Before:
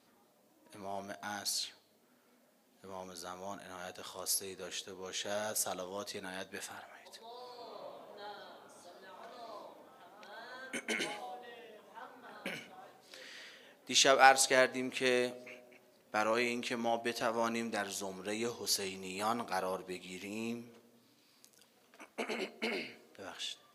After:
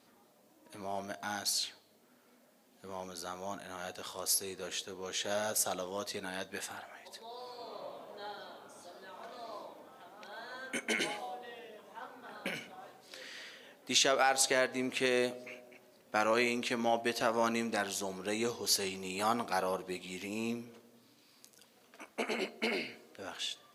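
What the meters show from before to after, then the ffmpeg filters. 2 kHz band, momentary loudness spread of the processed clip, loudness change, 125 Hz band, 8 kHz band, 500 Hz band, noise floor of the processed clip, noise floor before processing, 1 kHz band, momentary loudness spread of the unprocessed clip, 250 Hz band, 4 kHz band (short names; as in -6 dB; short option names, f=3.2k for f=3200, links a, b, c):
-0.5 dB, 19 LU, +0.5 dB, +2.5 dB, +1.5 dB, +1.0 dB, -66 dBFS, -69 dBFS, -1.0 dB, 20 LU, +2.5 dB, +1.5 dB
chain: -af "alimiter=limit=-18.5dB:level=0:latency=1:release=203,volume=3dB"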